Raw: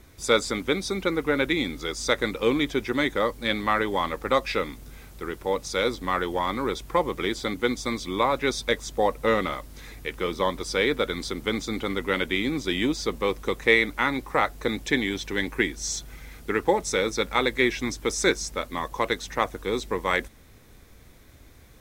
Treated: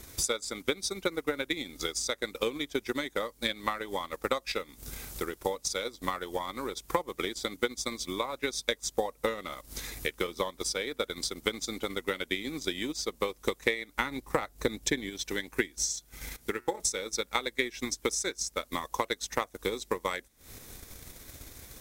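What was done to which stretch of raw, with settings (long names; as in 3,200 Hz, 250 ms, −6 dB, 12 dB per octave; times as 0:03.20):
0:13.97–0:15.10: low-shelf EQ 330 Hz +7.5 dB
0:16.36–0:16.80: tuned comb filter 120 Hz, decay 0.66 s, mix 70%
whole clip: bass and treble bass −3 dB, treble +10 dB; downward compressor 3 to 1, threshold −40 dBFS; transient designer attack +9 dB, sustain −10 dB; level +2.5 dB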